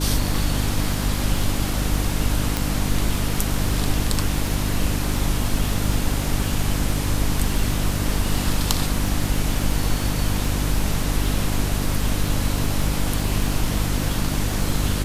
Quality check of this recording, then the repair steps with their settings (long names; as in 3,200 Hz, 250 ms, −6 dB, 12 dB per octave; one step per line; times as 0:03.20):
surface crackle 30 per second −26 dBFS
mains hum 50 Hz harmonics 6 −25 dBFS
0:02.57: click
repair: click removal
hum removal 50 Hz, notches 6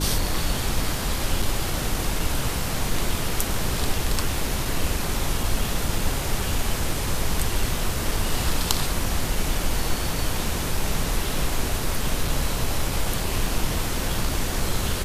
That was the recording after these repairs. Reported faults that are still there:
none of them is left